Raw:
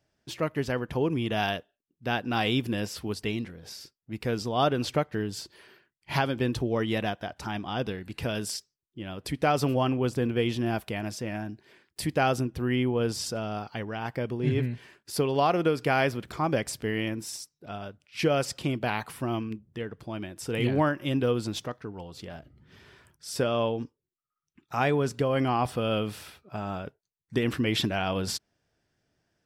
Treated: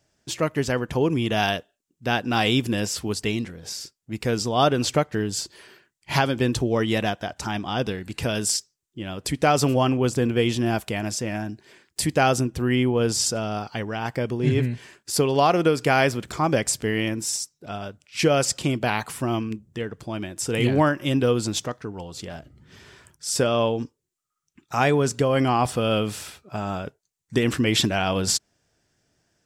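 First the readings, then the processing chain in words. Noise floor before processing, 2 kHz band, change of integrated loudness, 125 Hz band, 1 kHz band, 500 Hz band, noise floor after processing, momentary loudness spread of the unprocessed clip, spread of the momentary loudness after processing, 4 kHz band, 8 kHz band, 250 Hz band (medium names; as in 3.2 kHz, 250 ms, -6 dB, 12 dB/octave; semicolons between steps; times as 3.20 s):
under -85 dBFS, +5.5 dB, +5.5 dB, +5.0 dB, +5.0 dB, +5.0 dB, -80 dBFS, 14 LU, 13 LU, +7.0 dB, +12.5 dB, +5.0 dB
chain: peaking EQ 7.3 kHz +9.5 dB 0.82 oct; trim +5 dB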